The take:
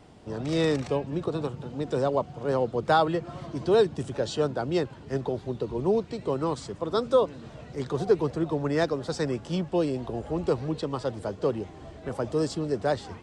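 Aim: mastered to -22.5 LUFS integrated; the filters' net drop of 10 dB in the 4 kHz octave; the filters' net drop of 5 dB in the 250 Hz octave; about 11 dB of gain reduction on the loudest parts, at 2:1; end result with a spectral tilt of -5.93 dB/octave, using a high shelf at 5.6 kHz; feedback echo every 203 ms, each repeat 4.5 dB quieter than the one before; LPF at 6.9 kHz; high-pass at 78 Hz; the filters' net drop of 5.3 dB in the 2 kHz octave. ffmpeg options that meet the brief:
-af "highpass=78,lowpass=6900,equalizer=f=250:t=o:g=-7.5,equalizer=f=2000:t=o:g=-5,equalizer=f=4000:t=o:g=-7,highshelf=f=5600:g=-8.5,acompressor=threshold=0.0112:ratio=2,aecho=1:1:203|406|609|812|1015|1218|1421|1624|1827:0.596|0.357|0.214|0.129|0.0772|0.0463|0.0278|0.0167|0.01,volume=5.31"

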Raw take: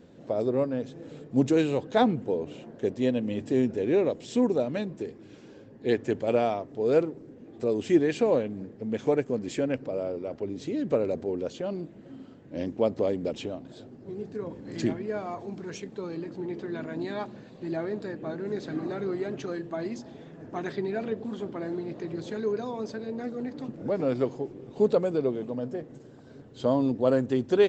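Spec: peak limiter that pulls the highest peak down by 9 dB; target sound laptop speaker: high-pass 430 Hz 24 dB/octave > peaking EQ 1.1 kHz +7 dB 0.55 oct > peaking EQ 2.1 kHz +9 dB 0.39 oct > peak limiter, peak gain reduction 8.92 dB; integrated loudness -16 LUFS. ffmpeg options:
-af "alimiter=limit=0.106:level=0:latency=1,highpass=f=430:w=0.5412,highpass=f=430:w=1.3066,equalizer=f=1100:t=o:w=0.55:g=7,equalizer=f=2100:t=o:w=0.39:g=9,volume=12.6,alimiter=limit=0.531:level=0:latency=1"

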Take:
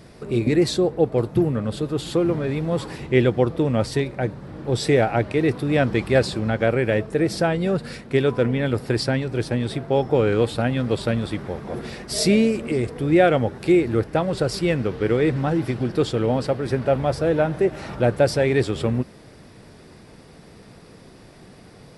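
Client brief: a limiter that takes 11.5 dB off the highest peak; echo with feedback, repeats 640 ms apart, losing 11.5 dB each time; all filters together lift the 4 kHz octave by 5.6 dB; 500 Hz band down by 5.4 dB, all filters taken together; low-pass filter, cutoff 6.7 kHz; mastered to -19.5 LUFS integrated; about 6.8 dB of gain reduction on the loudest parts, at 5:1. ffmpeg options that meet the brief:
-af "lowpass=6700,equalizer=f=500:t=o:g=-7,equalizer=f=4000:t=o:g=7.5,acompressor=threshold=0.0794:ratio=5,alimiter=limit=0.075:level=0:latency=1,aecho=1:1:640|1280|1920:0.266|0.0718|0.0194,volume=3.98"

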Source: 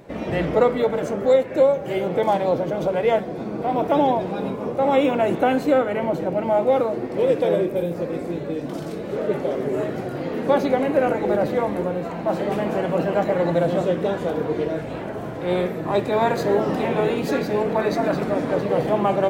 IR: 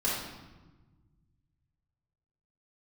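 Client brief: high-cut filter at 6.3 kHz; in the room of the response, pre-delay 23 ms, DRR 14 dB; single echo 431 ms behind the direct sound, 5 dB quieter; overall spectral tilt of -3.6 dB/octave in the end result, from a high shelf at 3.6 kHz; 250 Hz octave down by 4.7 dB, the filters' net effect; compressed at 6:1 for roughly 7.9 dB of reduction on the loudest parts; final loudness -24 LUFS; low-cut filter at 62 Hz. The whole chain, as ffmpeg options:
-filter_complex "[0:a]highpass=62,lowpass=6300,equalizer=f=250:t=o:g=-6.5,highshelf=f=3600:g=-6.5,acompressor=threshold=0.0794:ratio=6,aecho=1:1:431:0.562,asplit=2[s0][s1];[1:a]atrim=start_sample=2205,adelay=23[s2];[s1][s2]afir=irnorm=-1:irlink=0,volume=0.075[s3];[s0][s3]amix=inputs=2:normalize=0,volume=1.26"

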